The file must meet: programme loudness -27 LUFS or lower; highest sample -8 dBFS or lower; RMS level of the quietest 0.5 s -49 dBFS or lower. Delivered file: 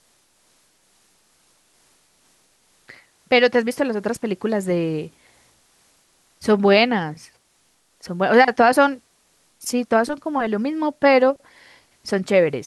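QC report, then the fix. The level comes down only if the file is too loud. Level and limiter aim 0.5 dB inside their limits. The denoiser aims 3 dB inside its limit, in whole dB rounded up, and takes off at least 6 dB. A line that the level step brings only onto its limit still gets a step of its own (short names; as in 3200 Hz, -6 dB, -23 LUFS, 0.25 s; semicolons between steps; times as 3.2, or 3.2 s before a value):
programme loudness -19.0 LUFS: fail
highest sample -4.0 dBFS: fail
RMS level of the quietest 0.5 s -62 dBFS: OK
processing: gain -8.5 dB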